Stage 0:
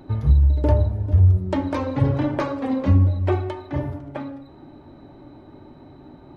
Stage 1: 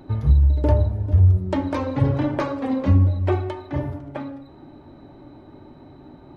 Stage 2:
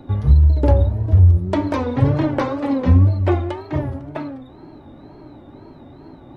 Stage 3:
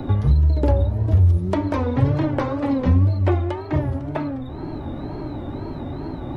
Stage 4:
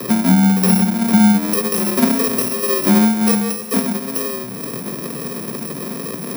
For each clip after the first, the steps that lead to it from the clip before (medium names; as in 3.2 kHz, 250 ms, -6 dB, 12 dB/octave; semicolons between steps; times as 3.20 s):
no audible change
wow and flutter 120 cents; trim +3.5 dB
three bands compressed up and down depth 70%; trim -2 dB
bit-reversed sample order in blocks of 64 samples; frequency shift +120 Hz; trim +3 dB